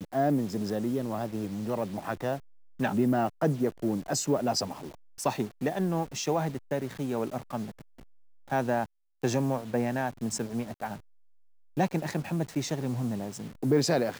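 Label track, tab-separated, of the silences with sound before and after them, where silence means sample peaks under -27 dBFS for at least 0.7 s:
7.570000	8.520000	silence
10.930000	11.780000	silence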